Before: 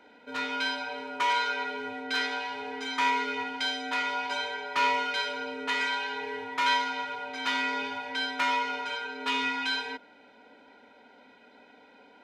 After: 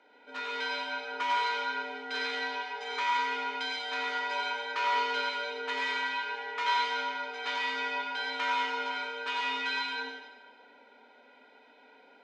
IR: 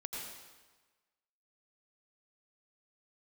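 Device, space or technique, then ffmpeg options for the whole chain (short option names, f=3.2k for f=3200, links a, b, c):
supermarket ceiling speaker: -filter_complex "[0:a]highpass=340,lowpass=6.1k[a];[1:a]atrim=start_sample=2205[b];[a][b]afir=irnorm=-1:irlink=0,volume=-1.5dB"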